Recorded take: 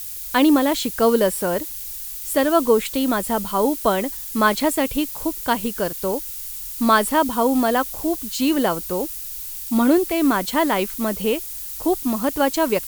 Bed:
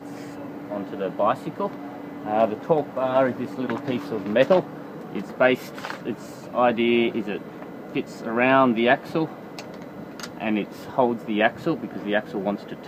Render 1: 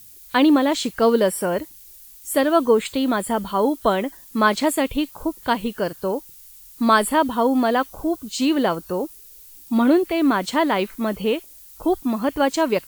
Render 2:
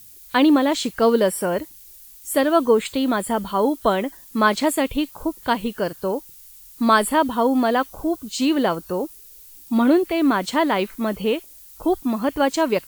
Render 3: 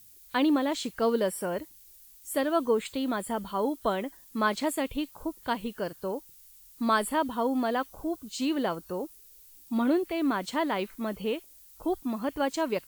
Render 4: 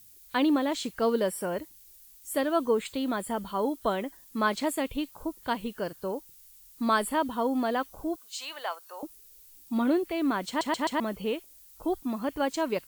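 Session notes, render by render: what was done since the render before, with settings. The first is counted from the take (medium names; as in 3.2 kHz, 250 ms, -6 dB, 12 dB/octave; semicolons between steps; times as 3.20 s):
noise print and reduce 13 dB
no audible change
trim -9 dB
8.16–9.03 s: high-pass 700 Hz 24 dB/octave; 10.48 s: stutter in place 0.13 s, 4 plays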